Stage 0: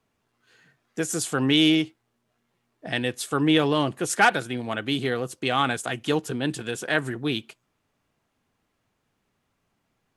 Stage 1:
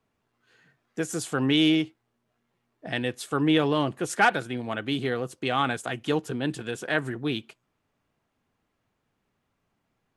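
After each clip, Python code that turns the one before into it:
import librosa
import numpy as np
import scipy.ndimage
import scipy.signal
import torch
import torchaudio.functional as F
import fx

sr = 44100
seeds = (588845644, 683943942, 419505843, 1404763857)

y = fx.high_shelf(x, sr, hz=3900.0, db=-6.0)
y = F.gain(torch.from_numpy(y), -1.5).numpy()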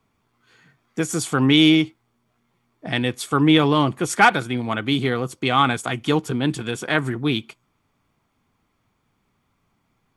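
y = x + 0.34 * np.pad(x, (int(0.9 * sr / 1000.0), 0))[:len(x)]
y = F.gain(torch.from_numpy(y), 6.5).numpy()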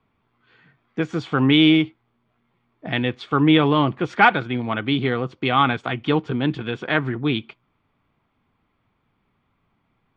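y = scipy.signal.sosfilt(scipy.signal.butter(4, 3600.0, 'lowpass', fs=sr, output='sos'), x)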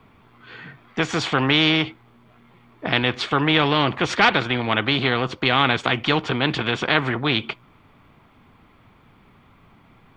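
y = fx.spectral_comp(x, sr, ratio=2.0)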